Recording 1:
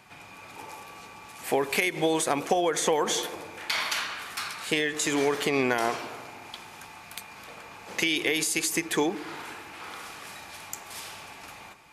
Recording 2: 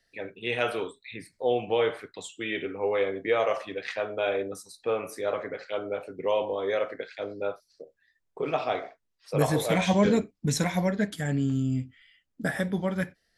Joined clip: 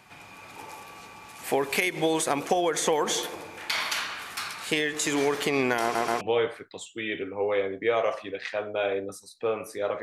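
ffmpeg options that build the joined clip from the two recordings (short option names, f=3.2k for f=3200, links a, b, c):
-filter_complex "[0:a]apad=whole_dur=10.02,atrim=end=10.02,asplit=3[a][b][c];[a]atrim=end=5.952[d];[b]atrim=start=5.818:end=5.952[e];[c]atrim=start=5.818:end=5.952[f];[1:a]atrim=start=1.638:end=5.45[g];[d][e]acrossfade=d=0.004:c1=hsin:c2=hsin[h];[h][f]acrossfade=d=0.004:c1=hsin:c2=hsin[i];[i][g]acrossfade=d=0.004:c1=hsin:c2=hsin"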